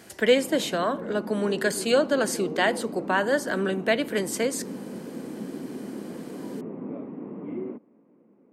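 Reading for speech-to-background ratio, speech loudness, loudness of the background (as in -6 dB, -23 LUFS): 11.0 dB, -25.5 LUFS, -36.5 LUFS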